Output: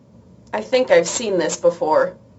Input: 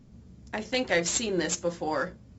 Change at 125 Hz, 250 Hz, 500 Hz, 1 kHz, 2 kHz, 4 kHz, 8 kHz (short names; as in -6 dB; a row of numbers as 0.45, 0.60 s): +4.5 dB, +6.0 dB, +14.0 dB, +12.0 dB, +5.0 dB, +4.5 dB, n/a